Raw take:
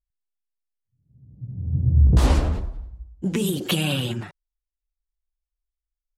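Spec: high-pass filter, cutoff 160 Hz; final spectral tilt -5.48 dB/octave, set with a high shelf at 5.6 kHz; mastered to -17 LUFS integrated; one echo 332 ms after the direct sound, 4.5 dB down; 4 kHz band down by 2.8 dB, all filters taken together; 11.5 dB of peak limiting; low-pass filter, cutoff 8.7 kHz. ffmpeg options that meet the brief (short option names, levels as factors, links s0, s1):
-af "highpass=160,lowpass=8700,equalizer=f=4000:t=o:g=-5.5,highshelf=f=5600:g=4.5,alimiter=limit=0.0668:level=0:latency=1,aecho=1:1:332:0.596,volume=6.31"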